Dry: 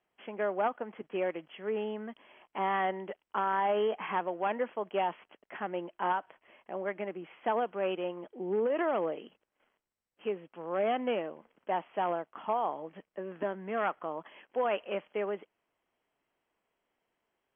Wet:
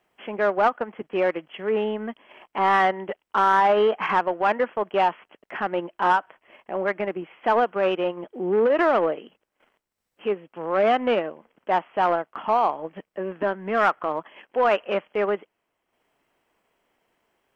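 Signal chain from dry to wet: dynamic bell 1.4 kHz, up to +5 dB, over -46 dBFS, Q 1.5; transient shaper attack -3 dB, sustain -7 dB; in parallel at -5 dB: saturation -30.5 dBFS, distortion -9 dB; on the sum: trim +7.5 dB

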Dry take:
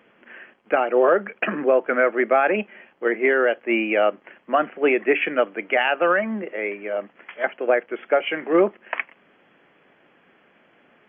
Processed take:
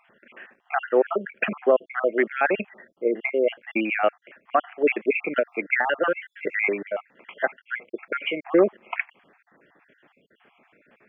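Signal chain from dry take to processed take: random holes in the spectrogram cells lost 55%; 5.36–6.83 s: three bands compressed up and down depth 100%

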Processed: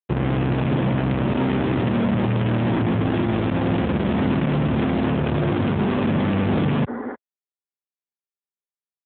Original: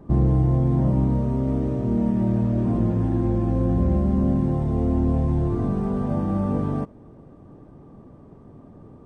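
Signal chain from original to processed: rattle on loud lows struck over -25 dBFS, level -26 dBFS; bass shelf 460 Hz -4.5 dB; early reflections 49 ms -12.5 dB, 59 ms -14 dB; in parallel at -1 dB: compression 16:1, threshold -37 dBFS, peak gain reduction 19.5 dB; on the sum: Schmitt trigger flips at -29.5 dBFS; spectral replace 6.90–7.12 s, 230–2100 Hz before; trim +6.5 dB; AMR-NB 7.95 kbps 8 kHz

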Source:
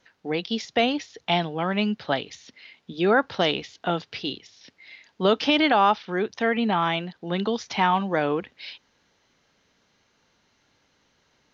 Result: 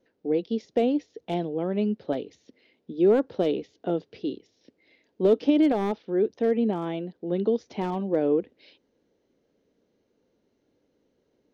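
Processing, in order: one-sided wavefolder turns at -15 dBFS; FFT filter 140 Hz 0 dB, 300 Hz +10 dB, 490 Hz +10 dB, 820 Hz -5 dB, 1.2 kHz -10 dB; trim -6.5 dB

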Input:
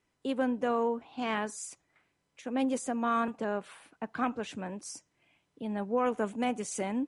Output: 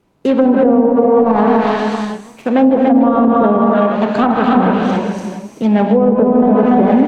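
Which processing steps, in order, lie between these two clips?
median filter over 25 samples; bass shelf 320 Hz -4.5 dB; on a send: delay 289 ms -4 dB; on the sum: gated-style reverb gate 450 ms flat, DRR 0.5 dB; low-pass that closes with the level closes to 470 Hz, closed at -25 dBFS; peaking EQ 190 Hz +3 dB 0.77 oct; loudness maximiser +23.5 dB; modulated delay 154 ms, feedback 35%, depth 211 cents, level -16 dB; trim -1.5 dB

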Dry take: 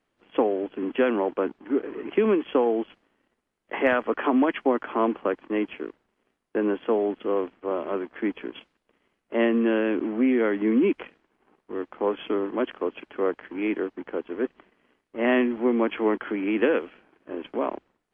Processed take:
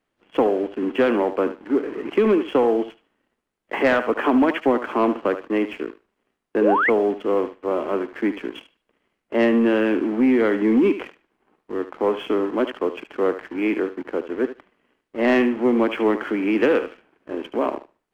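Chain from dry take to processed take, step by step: thinning echo 74 ms, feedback 24%, high-pass 380 Hz, level -11 dB; waveshaping leveller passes 1; painted sound rise, 6.61–6.90 s, 390–2300 Hz -20 dBFS; trim +1 dB

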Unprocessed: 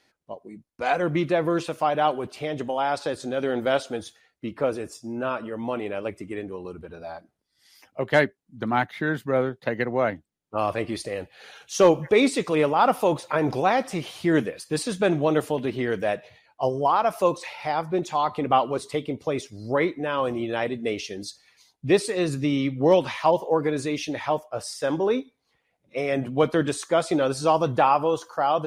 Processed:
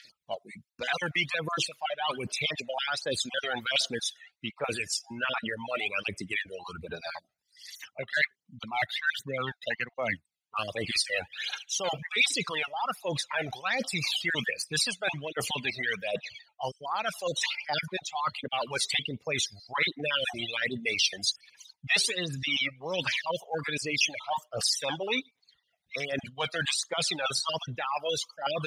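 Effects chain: random holes in the spectrogram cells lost 22%; phaser 1.3 Hz, delay 1.6 ms, feedback 59%; peaking EQ 320 Hz -10 dB 0.98 oct; reverse; compression 20:1, threshold -31 dBFS, peak gain reduction 19.5 dB; reverse; frequency weighting D; in parallel at -2 dB: peak limiter -22.5 dBFS, peak gain reduction 9.5 dB; on the sum: reverb removal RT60 1.9 s; trim -1.5 dB

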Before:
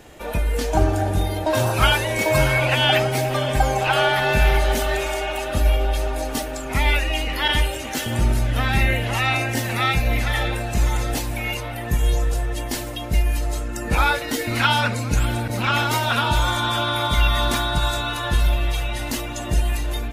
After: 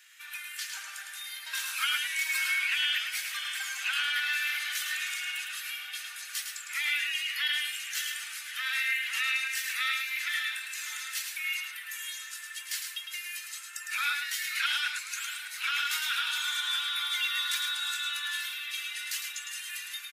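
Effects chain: steep high-pass 1.5 kHz 36 dB/octave; compression 3:1, threshold -22 dBFS, peak gain reduction 5.5 dB; on a send: delay 107 ms -5.5 dB; on the sum: trim -4.5 dB

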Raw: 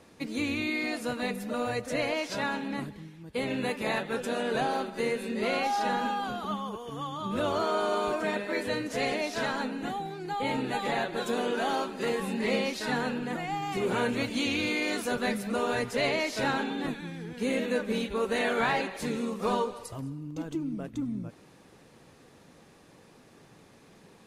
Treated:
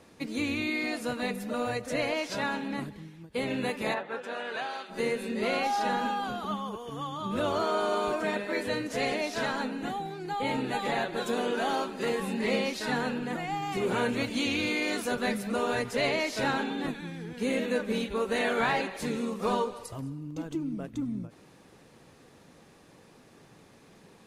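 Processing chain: 3.93–4.89 s: band-pass filter 760 Hz -> 3.2 kHz, Q 0.72; endings held to a fixed fall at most 250 dB/s

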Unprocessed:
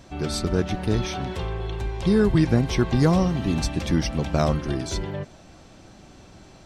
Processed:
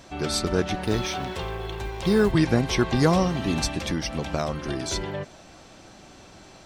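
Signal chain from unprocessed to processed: 0.84–2.32 s: companding laws mixed up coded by A; bass shelf 290 Hz -8.5 dB; 3.67–4.83 s: compression 3:1, threshold -28 dBFS, peak gain reduction 7.5 dB; trim +3.5 dB

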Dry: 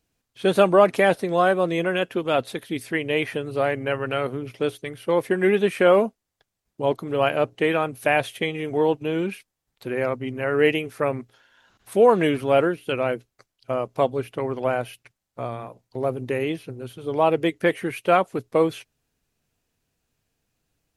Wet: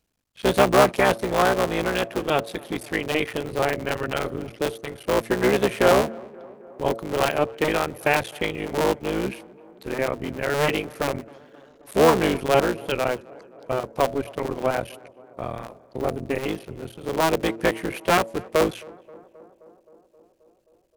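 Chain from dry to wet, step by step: cycle switcher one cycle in 3, muted; de-hum 112.8 Hz, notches 6; tape echo 264 ms, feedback 81%, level -22 dB, low-pass 1.5 kHz; trim +1 dB

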